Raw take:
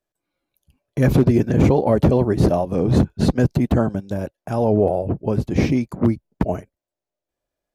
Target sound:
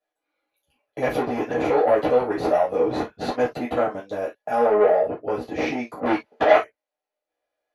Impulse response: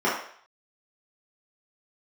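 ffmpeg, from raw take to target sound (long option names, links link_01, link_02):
-filter_complex "[0:a]asettb=1/sr,asplit=3[link_01][link_02][link_03];[link_01]atrim=end=4.394[link_04];[link_02]atrim=start=4.39:end=5.12,asetpts=PTS-STARTPTS,afade=type=in:duration=0.004:curve=qsin,afade=type=out:start_time=0.726:duration=0.004:curve=qsin,aecho=1:1:4.8:0.56,atrim=end_sample=32193[link_05];[link_03]atrim=start=5.116[link_06];[link_04][link_05]acrossfade=duration=0.004:curve1=hsin:curve2=qsin[link_07];[link_07][link_06]acrossfade=duration=0.004:curve1=qsin:curve2=hsin,asettb=1/sr,asplit=3[link_08][link_09][link_10];[link_08]atrim=end=6.064[link_11];[link_09]atrim=start=6.06:end=6.57,asetpts=PTS-STARTPTS,afade=type=in:duration=0.004:curve=qsin,afade=type=out:start_time=0.506:duration=0.004:curve=qsin,asplit=2[link_12][link_13];[link_13]highpass=frequency=720:poles=1,volume=30dB,asoftclip=type=tanh:threshold=-5.5dB[link_14];[link_12][link_14]amix=inputs=2:normalize=0,lowpass=frequency=1800:poles=1,volume=-6dB[link_15];[link_10]atrim=start=6.566[link_16];[link_11][link_15]acrossfade=duration=0.004:curve1=hsin:curve2=qsin[link_17];[link_17][link_16]acrossfade=duration=0.004:curve1=qsin:curve2=hsin,asoftclip=type=tanh:threshold=-13dB[link_18];[1:a]atrim=start_sample=2205,atrim=end_sample=6615,asetrate=88200,aresample=44100[link_19];[link_18][link_19]afir=irnorm=-1:irlink=0,volume=-8.5dB"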